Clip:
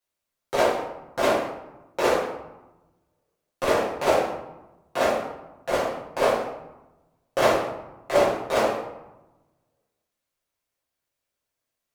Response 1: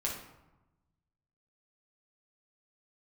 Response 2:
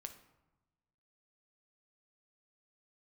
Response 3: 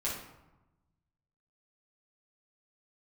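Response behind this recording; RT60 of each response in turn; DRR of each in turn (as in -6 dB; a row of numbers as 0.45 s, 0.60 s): 3; 1.0 s, 1.1 s, 1.0 s; -3.5 dB, 6.5 dB, -7.5 dB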